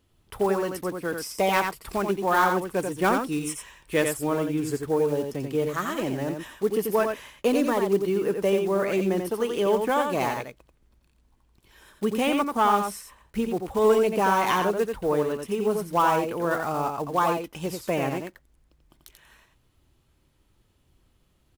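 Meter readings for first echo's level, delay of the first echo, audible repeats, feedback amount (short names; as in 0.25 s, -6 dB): -5.5 dB, 88 ms, 1, no steady repeat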